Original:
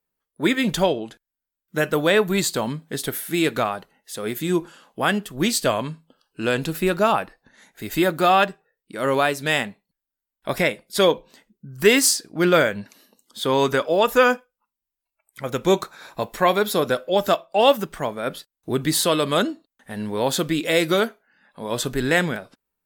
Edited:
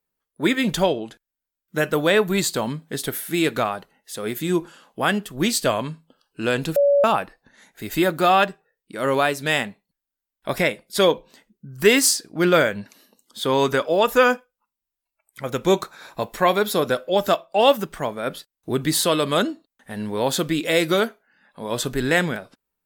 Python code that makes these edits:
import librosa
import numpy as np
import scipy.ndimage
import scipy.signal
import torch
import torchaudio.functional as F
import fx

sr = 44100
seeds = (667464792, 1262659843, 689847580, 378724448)

y = fx.edit(x, sr, fx.bleep(start_s=6.76, length_s=0.28, hz=568.0, db=-13.0), tone=tone)